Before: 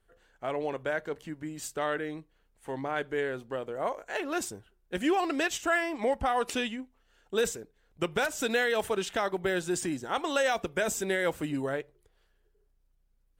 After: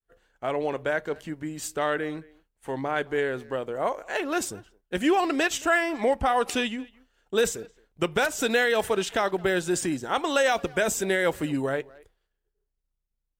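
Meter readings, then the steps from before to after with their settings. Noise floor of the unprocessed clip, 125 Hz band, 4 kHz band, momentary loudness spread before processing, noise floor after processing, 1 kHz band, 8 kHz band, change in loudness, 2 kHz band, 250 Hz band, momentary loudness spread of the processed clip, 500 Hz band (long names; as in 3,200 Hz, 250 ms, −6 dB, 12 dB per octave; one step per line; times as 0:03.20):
−70 dBFS, +4.5 dB, +4.5 dB, 12 LU, −80 dBFS, +4.5 dB, +4.5 dB, +4.5 dB, +4.5 dB, +4.5 dB, 12 LU, +4.5 dB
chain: far-end echo of a speakerphone 220 ms, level −22 dB
downward expander −58 dBFS
level +4.5 dB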